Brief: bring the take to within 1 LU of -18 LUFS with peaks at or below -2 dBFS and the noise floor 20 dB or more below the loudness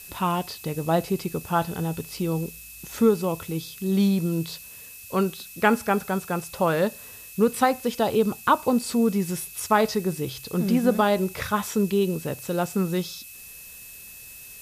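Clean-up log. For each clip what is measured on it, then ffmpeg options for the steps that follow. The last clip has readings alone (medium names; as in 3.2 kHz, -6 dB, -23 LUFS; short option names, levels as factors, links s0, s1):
steady tone 2.6 kHz; tone level -48 dBFS; noise floor -43 dBFS; noise floor target -45 dBFS; loudness -25.0 LUFS; peak level -6.0 dBFS; loudness target -18.0 LUFS
-> -af "bandreject=f=2600:w=30"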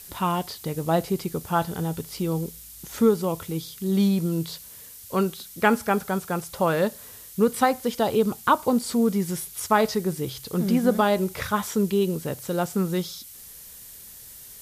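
steady tone not found; noise floor -44 dBFS; noise floor target -45 dBFS
-> -af "afftdn=nr=6:nf=-44"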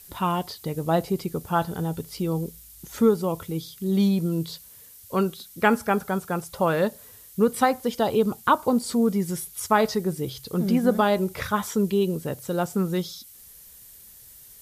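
noise floor -48 dBFS; loudness -25.0 LUFS; peak level -6.0 dBFS; loudness target -18.0 LUFS
-> -af "volume=2.24,alimiter=limit=0.794:level=0:latency=1"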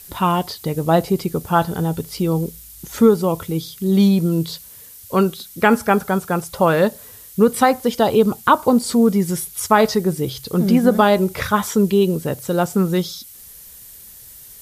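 loudness -18.0 LUFS; peak level -2.0 dBFS; noise floor -41 dBFS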